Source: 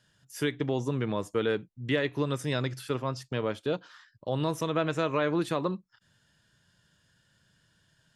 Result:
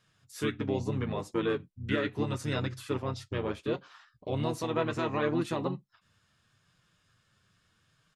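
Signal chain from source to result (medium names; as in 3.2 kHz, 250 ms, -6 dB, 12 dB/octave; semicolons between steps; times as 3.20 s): resampled via 32 kHz; harmony voices -5 st -3 dB; flange 0.73 Hz, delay 5.6 ms, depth 5 ms, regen -41%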